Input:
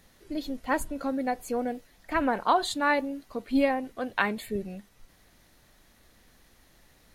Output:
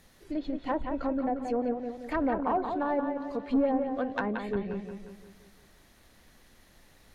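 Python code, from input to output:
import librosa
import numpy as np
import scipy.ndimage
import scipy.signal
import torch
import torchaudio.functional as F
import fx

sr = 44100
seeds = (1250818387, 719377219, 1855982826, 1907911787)

y = np.clip(10.0 ** (20.0 / 20.0) * x, -1.0, 1.0) / 10.0 ** (20.0 / 20.0)
y = fx.env_lowpass_down(y, sr, base_hz=800.0, full_db=-25.0)
y = fx.echo_bbd(y, sr, ms=177, stages=4096, feedback_pct=49, wet_db=-6)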